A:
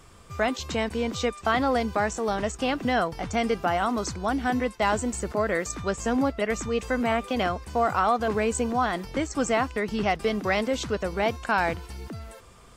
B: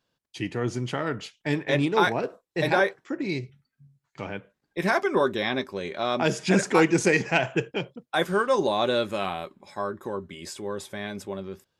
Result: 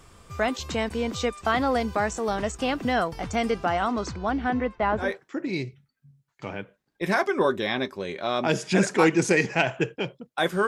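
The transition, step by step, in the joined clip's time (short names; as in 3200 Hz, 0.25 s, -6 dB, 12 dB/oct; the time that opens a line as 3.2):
A
3.51–5.15 LPF 9500 Hz -> 1300 Hz
5.06 switch to B from 2.82 s, crossfade 0.18 s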